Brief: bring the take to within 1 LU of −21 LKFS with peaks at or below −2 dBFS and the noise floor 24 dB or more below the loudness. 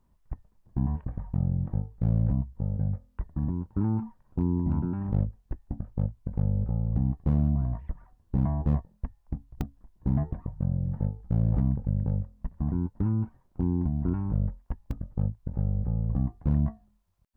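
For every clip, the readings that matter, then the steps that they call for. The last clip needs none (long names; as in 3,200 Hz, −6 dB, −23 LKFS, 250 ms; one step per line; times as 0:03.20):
share of clipped samples 0.5%; peaks flattened at −17.0 dBFS; number of dropouts 2; longest dropout 1.8 ms; integrated loudness −30.0 LKFS; sample peak −17.0 dBFS; target loudness −21.0 LKFS
→ clipped peaks rebuilt −17 dBFS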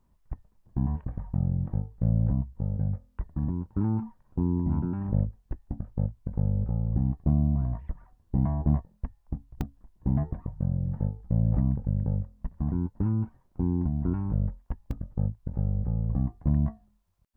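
share of clipped samples 0.0%; number of dropouts 2; longest dropout 1.8 ms
→ repair the gap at 0:09.61/0:14.91, 1.8 ms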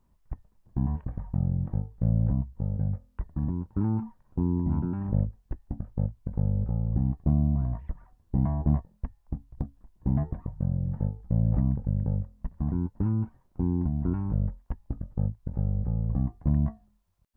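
number of dropouts 0; integrated loudness −29.5 LKFS; sample peak −13.5 dBFS; target loudness −21.0 LKFS
→ level +8.5 dB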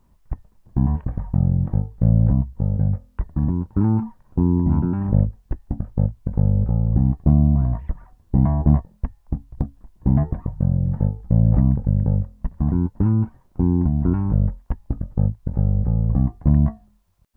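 integrated loudness −21.0 LKFS; sample peak −5.0 dBFS; background noise floor −57 dBFS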